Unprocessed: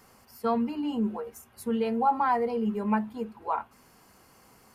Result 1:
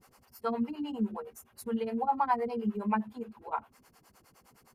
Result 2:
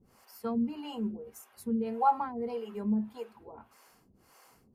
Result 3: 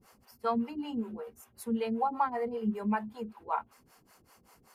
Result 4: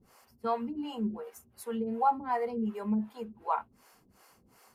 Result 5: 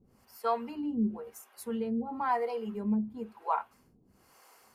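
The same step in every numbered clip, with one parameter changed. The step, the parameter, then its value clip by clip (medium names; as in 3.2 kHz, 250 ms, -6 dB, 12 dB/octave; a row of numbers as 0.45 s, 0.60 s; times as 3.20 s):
harmonic tremolo, rate: 9.7 Hz, 1.7 Hz, 5.2 Hz, 2.7 Hz, 1 Hz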